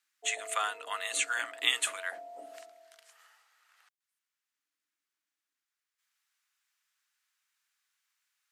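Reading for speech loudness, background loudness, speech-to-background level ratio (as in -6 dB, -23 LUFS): -32.0 LUFS, -48.0 LUFS, 16.0 dB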